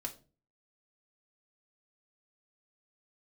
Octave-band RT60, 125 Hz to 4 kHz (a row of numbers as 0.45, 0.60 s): 0.55, 0.50, 0.40, 0.30, 0.25, 0.25 s